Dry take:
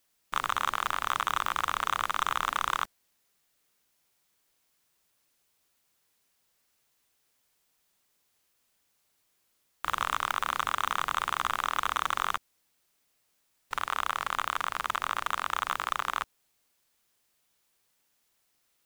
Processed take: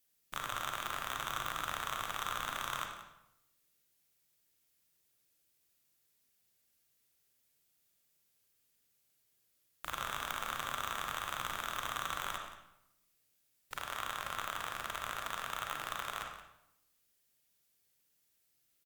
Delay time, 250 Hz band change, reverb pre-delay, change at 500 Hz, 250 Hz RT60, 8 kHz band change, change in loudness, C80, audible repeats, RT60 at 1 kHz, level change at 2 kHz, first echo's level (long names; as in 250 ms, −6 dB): 177 ms, −4.0 dB, 32 ms, −4.0 dB, 1.0 s, −3.5 dB, −8.5 dB, 6.5 dB, 1, 0.80 s, −7.5 dB, −14.0 dB